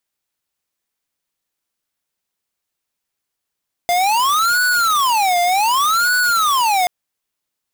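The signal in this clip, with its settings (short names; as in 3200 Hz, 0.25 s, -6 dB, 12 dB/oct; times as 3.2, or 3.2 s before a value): siren wail 700–1480 Hz 0.66/s square -15.5 dBFS 2.98 s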